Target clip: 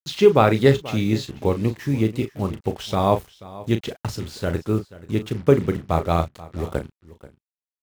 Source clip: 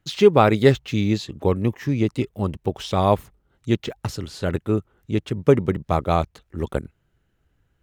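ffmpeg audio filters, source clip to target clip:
-filter_complex "[0:a]tremolo=f=62:d=0.182,acrusher=bits=6:mix=0:aa=0.5,asplit=2[a][b];[b]adelay=36,volume=-9.5dB[c];[a][c]amix=inputs=2:normalize=0,asplit=2[d][e];[e]aecho=0:1:484:0.119[f];[d][f]amix=inputs=2:normalize=0"

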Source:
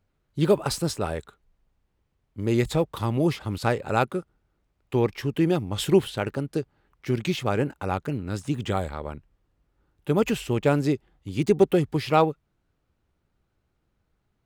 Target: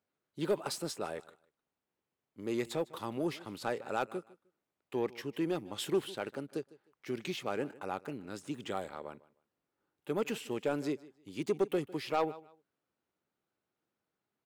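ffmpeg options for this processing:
-filter_complex "[0:a]highpass=250,asplit=2[a][b];[b]aecho=0:1:153|306:0.0891|0.0196[c];[a][c]amix=inputs=2:normalize=0,asoftclip=type=tanh:threshold=-13dB,volume=-8.5dB"

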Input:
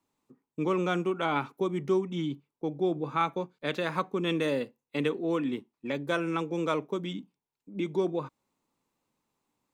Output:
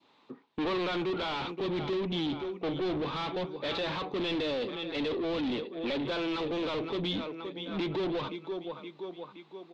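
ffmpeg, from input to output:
-filter_complex "[0:a]asplit=2[a][b];[b]aecho=0:1:521|1042|1563|2084:0.1|0.05|0.025|0.0125[c];[a][c]amix=inputs=2:normalize=0,asplit=2[d][e];[e]highpass=f=720:p=1,volume=36dB,asoftclip=type=tanh:threshold=-14.5dB[f];[d][f]amix=inputs=2:normalize=0,lowpass=f=1.5k:p=1,volume=-6dB,lowpass=f=3.8k:t=q:w=3.5,adynamicequalizer=threshold=0.0126:dfrequency=1400:dqfactor=0.84:tfrequency=1400:tqfactor=0.84:attack=5:release=100:ratio=0.375:range=4:mode=cutabove:tftype=bell,volume=-9dB"

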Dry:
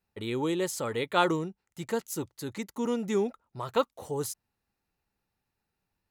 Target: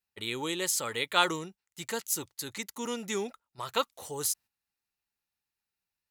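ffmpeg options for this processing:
-af "tiltshelf=f=1.2k:g=-8,agate=range=-9dB:threshold=-48dB:ratio=16:detection=peak"

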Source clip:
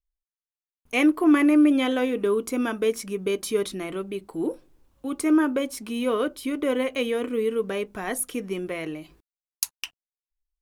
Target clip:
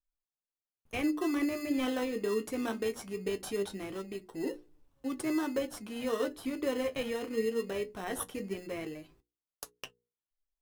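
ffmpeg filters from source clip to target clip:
-filter_complex "[0:a]asplit=2[a][b];[b]acrusher=samples=19:mix=1:aa=0.000001,volume=-3.5dB[c];[a][c]amix=inputs=2:normalize=0,alimiter=limit=-11.5dB:level=0:latency=1:release=158,bandreject=f=60:t=h:w=6,bandreject=f=120:t=h:w=6,bandreject=f=180:t=h:w=6,bandreject=f=240:t=h:w=6,bandreject=f=300:t=h:w=6,bandreject=f=360:t=h:w=6,bandreject=f=420:t=h:w=6,bandreject=f=480:t=h:w=6,flanger=delay=6.6:depth=7.5:regen=51:speed=0.21:shape=triangular,volume=-6.5dB"

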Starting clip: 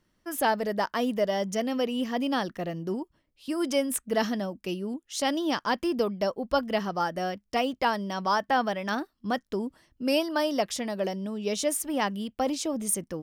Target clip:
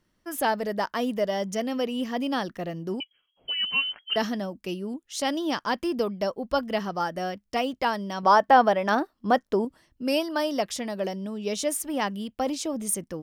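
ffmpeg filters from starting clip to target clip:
-filter_complex "[0:a]asettb=1/sr,asplit=3[a][b][c];[a]atrim=end=3.004[d];[b]atrim=start=3:end=4.16,asetpts=PTS-STARTPTS,afade=t=in:d=0.004:c=qsin,afade=t=out:st=1.156:d=0.004:c=qsin,lowpass=f=2.8k:t=q:w=0.5098,lowpass=f=2.8k:t=q:w=0.6013,lowpass=f=2.8k:t=q:w=0.9,lowpass=f=2.8k:t=q:w=2.563,afreqshift=-3300[e];[c]atrim=start=4.156[f];[d][e]acrossfade=d=0.004:c1=hsin:c2=qsin[g];[g][f]acrossfade=d=0.004:c1=qsin:c2=hsin,asettb=1/sr,asplit=3[h][i][j];[h]atrim=end=8.234[k];[i]atrim=start=8.23:end=9.65,asetpts=PTS-STARTPTS,afade=t=in:d=0.004:c=qsin,afade=t=out:st=1.416:d=0.004:c=qsin,equalizer=f=660:t=o:w=2.6:g=9[l];[j]atrim=start=9.646[m];[k][l]acrossfade=d=0.004:c1=hsin:c2=qsin[n];[n][m]acrossfade=d=0.004:c1=qsin:c2=hsin"

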